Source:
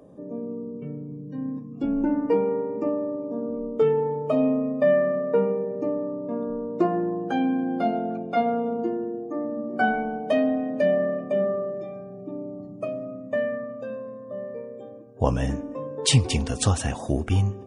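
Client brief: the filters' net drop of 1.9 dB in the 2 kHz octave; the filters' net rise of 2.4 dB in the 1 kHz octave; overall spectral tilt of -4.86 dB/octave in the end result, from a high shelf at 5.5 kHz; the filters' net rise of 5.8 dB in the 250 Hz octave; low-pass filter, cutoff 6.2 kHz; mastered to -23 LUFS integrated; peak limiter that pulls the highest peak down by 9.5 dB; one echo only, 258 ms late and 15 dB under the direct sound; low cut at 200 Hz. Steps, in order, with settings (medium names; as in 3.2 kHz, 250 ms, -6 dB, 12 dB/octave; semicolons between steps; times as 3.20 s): high-pass 200 Hz; low-pass 6.2 kHz; peaking EQ 250 Hz +8 dB; peaking EQ 1 kHz +4 dB; peaking EQ 2 kHz -4 dB; treble shelf 5.5 kHz -8 dB; peak limiter -13 dBFS; delay 258 ms -15 dB; trim +1 dB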